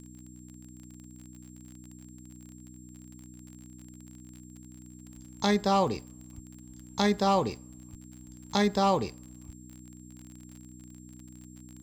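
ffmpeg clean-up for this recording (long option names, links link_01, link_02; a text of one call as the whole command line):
ffmpeg -i in.wav -af "adeclick=threshold=4,bandreject=frequency=62:width_type=h:width=4,bandreject=frequency=124:width_type=h:width=4,bandreject=frequency=186:width_type=h:width=4,bandreject=frequency=248:width_type=h:width=4,bandreject=frequency=310:width_type=h:width=4,bandreject=frequency=7500:width=30,agate=range=-21dB:threshold=-41dB" out.wav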